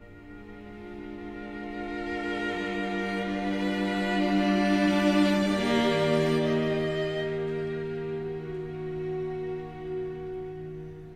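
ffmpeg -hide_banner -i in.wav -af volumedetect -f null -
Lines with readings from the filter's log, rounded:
mean_volume: -28.6 dB
max_volume: -11.7 dB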